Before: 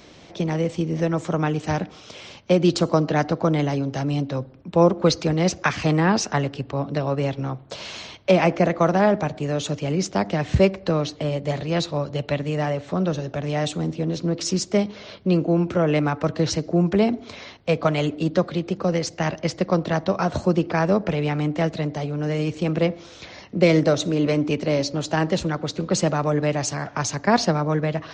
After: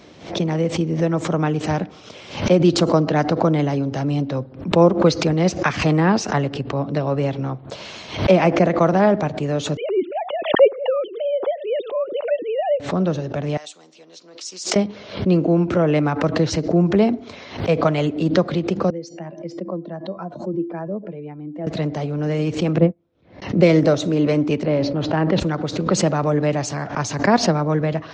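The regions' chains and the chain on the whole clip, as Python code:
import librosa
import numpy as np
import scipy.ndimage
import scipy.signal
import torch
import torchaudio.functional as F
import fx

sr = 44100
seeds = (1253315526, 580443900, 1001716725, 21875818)

y = fx.chain(x, sr, fx.sine_speech(),
    fx.peak_eq(hz=1800.0, db=-10.0, octaves=0.9), at=(9.77, 12.8))
y = fx.chain(y, sr, fx.highpass(hz=1400.0, slope=12),
    fx.peak_eq(hz=1800.0, db=-11.0, octaves=2.3), at=(13.57, 14.76))
y = fx.chain(y, sr, fx.spec_expand(power=1.7),
    fx.highpass(hz=170.0, slope=24),
    fx.comb_fb(f0_hz=340.0, decay_s=0.24, harmonics='odd', damping=0.0, mix_pct=70), at=(18.9, 21.67))
y = fx.chain(y, sr, fx.lowpass(hz=3300.0, slope=12),
    fx.tilt_shelf(db=8.0, hz=630.0),
    fx.upward_expand(threshold_db=-33.0, expansion=2.5), at=(22.78, 23.42))
y = fx.chain(y, sr, fx.air_absorb(metres=260.0),
    fx.sustainer(db_per_s=44.0), at=(24.63, 25.4))
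y = fx.highpass(y, sr, hz=160.0, slope=6)
y = fx.tilt_eq(y, sr, slope=-1.5)
y = fx.pre_swell(y, sr, db_per_s=120.0)
y = y * 10.0 ** (1.5 / 20.0)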